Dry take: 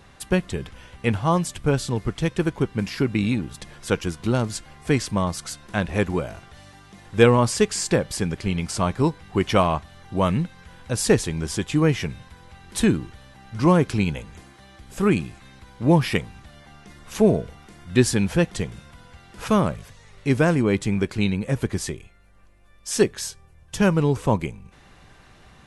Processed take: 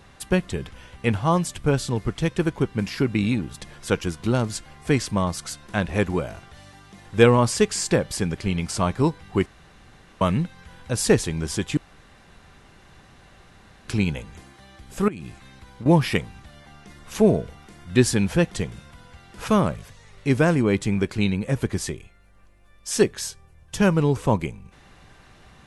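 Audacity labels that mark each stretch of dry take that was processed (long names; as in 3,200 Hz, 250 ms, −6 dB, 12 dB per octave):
9.460000	10.210000	fill with room tone
11.770000	13.880000	fill with room tone
15.080000	15.860000	downward compressor 16 to 1, threshold −30 dBFS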